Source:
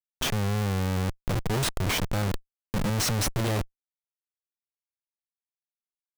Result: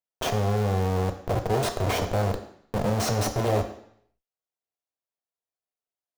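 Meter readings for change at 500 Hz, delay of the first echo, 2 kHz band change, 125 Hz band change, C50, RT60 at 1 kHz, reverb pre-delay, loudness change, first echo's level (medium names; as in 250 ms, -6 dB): +7.5 dB, no echo, -2.0 dB, +1.0 dB, 10.5 dB, 0.70 s, 3 ms, +1.5 dB, no echo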